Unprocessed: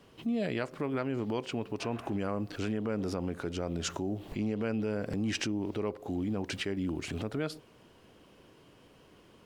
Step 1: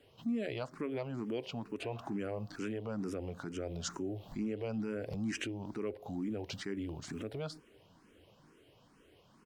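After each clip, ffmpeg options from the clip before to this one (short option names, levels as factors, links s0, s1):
-filter_complex "[0:a]asplit=2[s0][s1];[s1]adelay=1050,volume=0.0355,highshelf=f=4000:g=-23.6[s2];[s0][s2]amix=inputs=2:normalize=0,asplit=2[s3][s4];[s4]afreqshift=2.2[s5];[s3][s5]amix=inputs=2:normalize=1,volume=0.75"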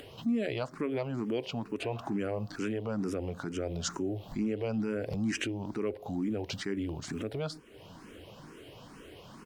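-af "acompressor=mode=upward:threshold=0.00562:ratio=2.5,volume=1.78"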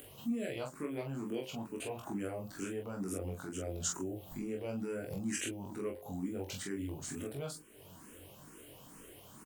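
-filter_complex "[0:a]aexciter=amount=5.9:drive=5.8:freq=7000,asplit=2[s0][s1];[s1]aecho=0:1:21|44:0.708|0.596[s2];[s0][s2]amix=inputs=2:normalize=0,volume=0.376"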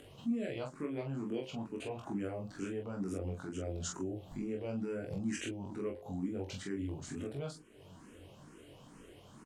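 -af "lowpass=6100,lowshelf=f=470:g=4,volume=0.794"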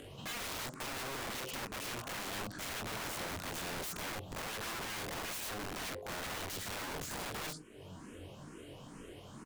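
-af "aeval=exprs='(mod(112*val(0)+1,2)-1)/112':c=same,volume=1.78"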